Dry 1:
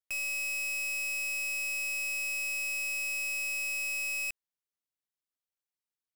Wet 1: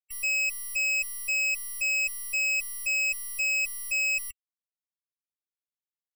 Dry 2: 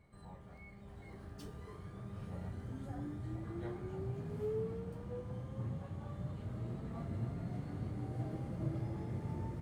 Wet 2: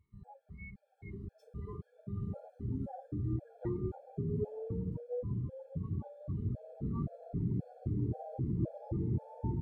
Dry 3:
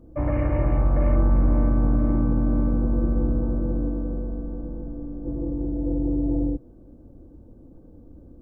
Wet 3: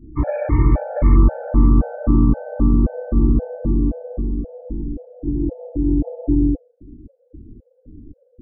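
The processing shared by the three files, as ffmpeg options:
-af "afftdn=nr=23:nf=-46,afftfilt=real='re*gt(sin(2*PI*1.9*pts/sr)*(1-2*mod(floor(b*sr/1024/450),2)),0)':imag='im*gt(sin(2*PI*1.9*pts/sr)*(1-2*mod(floor(b*sr/1024/450),2)),0)':win_size=1024:overlap=0.75,volume=2.51"

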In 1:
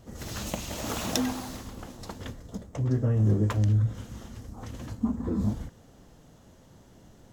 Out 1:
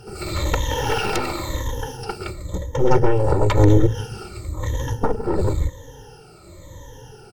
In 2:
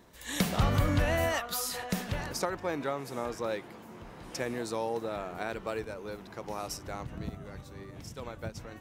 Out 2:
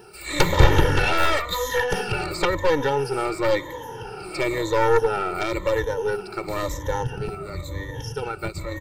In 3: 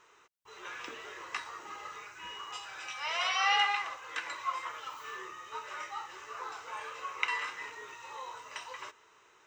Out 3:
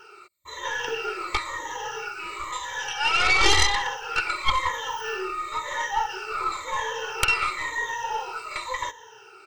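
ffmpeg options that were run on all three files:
-filter_complex "[0:a]afftfilt=real='re*pow(10,20/40*sin(2*PI*(1.1*log(max(b,1)*sr/1024/100)/log(2)-(-0.97)*(pts-256)/sr)))':imag='im*pow(10,20/40*sin(2*PI*(1.1*log(max(b,1)*sr/1024/100)/log(2)-(-0.97)*(pts-256)/sr)))':win_size=1024:overlap=0.75,acrossover=split=3600[s0][s1];[s1]acompressor=threshold=0.00501:ratio=4:attack=1:release=60[s2];[s0][s2]amix=inputs=2:normalize=0,aeval=exprs='0.422*(cos(1*acos(clip(val(0)/0.422,-1,1)))-cos(1*PI/2))+0.211*(cos(7*acos(clip(val(0)/0.422,-1,1)))-cos(7*PI/2))+0.0841*(cos(8*acos(clip(val(0)/0.422,-1,1)))-cos(8*PI/2))':c=same,aecho=1:1:2.2:0.84,volume=0.891"

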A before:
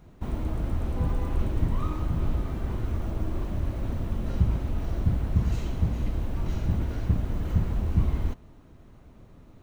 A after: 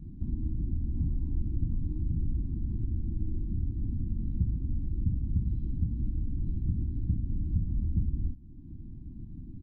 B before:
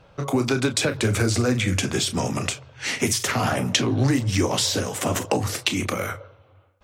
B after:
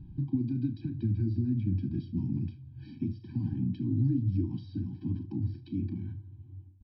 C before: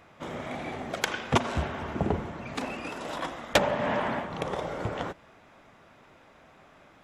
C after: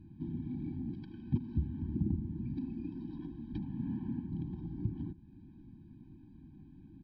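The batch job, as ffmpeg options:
-filter_complex "[0:a]bass=f=250:g=3,treble=f=4000:g=10,asplit=2[s0][s1];[s1]acrusher=bits=2:mode=log:mix=0:aa=0.000001,volume=0.376[s2];[s0][s2]amix=inputs=2:normalize=0,acompressor=threshold=0.00891:ratio=2,firequalizer=gain_entry='entry(290,0);entry(650,-24);entry(1100,-29)':delay=0.05:min_phase=1,aecho=1:1:75:0.106,aresample=11025,aresample=44100,afftfilt=real='re*eq(mod(floor(b*sr/1024/370),2),0)':imag='im*eq(mod(floor(b*sr/1024/370),2),0)':win_size=1024:overlap=0.75,volume=1.58"

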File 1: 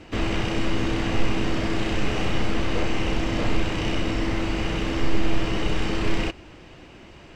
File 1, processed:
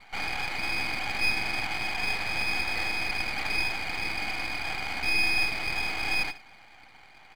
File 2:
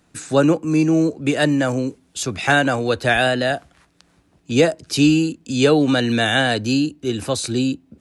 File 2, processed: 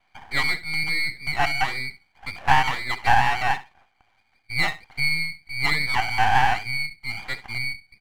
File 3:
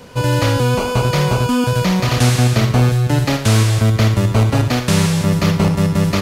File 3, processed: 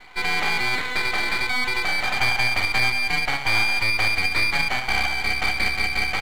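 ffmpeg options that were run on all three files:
-filter_complex "[0:a]lowpass=f=2100:t=q:w=0.5098,lowpass=f=2100:t=q:w=0.6013,lowpass=f=2100:t=q:w=0.9,lowpass=f=2100:t=q:w=2.563,afreqshift=-2500,highpass=f=770:t=q:w=8.2,asplit=2[s0][s1];[s1]aecho=0:1:67|134:0.168|0.0285[s2];[s0][s2]amix=inputs=2:normalize=0,aeval=exprs='max(val(0),0)':c=same,volume=0.501"

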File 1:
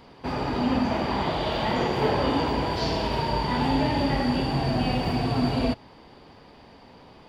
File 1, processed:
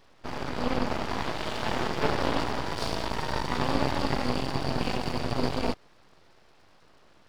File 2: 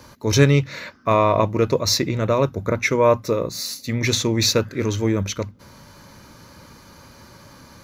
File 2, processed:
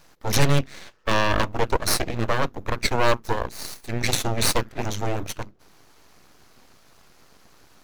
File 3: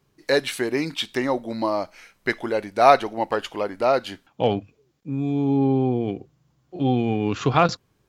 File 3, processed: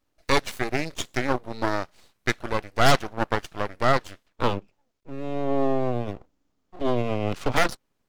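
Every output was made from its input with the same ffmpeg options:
-af "aeval=exprs='0.891*(cos(1*acos(clip(val(0)/0.891,-1,1)))-cos(1*PI/2))+0.316*(cos(8*acos(clip(val(0)/0.891,-1,1)))-cos(8*PI/2))':c=same,aeval=exprs='abs(val(0))':c=same,volume=0.447"

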